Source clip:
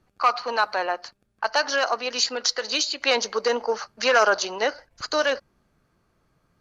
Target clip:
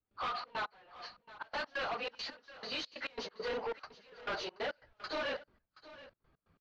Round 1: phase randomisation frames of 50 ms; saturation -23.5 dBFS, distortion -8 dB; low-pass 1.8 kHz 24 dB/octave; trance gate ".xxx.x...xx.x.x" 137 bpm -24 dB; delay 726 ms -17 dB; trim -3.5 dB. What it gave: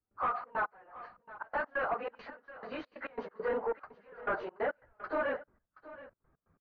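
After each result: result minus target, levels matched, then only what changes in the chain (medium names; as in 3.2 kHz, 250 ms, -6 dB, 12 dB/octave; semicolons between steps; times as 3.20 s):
4 kHz band -20.0 dB; saturation: distortion -4 dB
change: low-pass 4.1 kHz 24 dB/octave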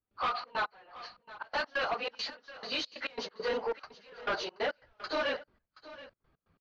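saturation: distortion -4 dB
change: saturation -30.5 dBFS, distortion -4 dB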